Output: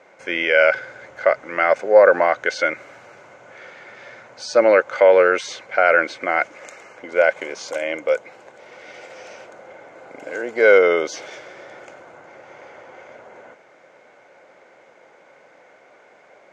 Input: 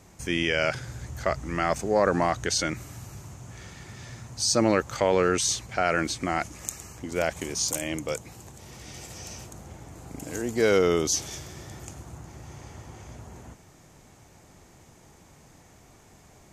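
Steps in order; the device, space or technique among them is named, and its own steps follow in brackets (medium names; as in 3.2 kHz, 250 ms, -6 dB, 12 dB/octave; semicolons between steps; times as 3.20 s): tin-can telephone (band-pass 490–2700 Hz; small resonant body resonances 540/1500/2100 Hz, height 12 dB, ringing for 25 ms); trim +5 dB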